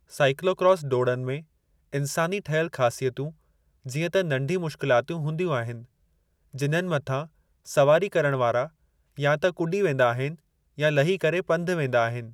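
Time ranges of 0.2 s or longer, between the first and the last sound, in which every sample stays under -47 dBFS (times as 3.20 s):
1.43–1.93 s
3.33–3.85 s
5.85–6.53 s
7.27–7.65 s
8.69–9.17 s
10.39–10.78 s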